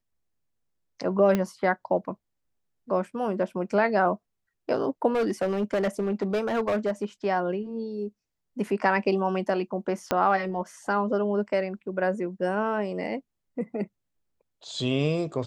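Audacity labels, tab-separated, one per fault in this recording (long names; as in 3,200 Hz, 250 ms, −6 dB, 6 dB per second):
1.350000	1.350000	click −12 dBFS
5.140000	7.040000	clipping −21 dBFS
10.110000	10.110000	click −9 dBFS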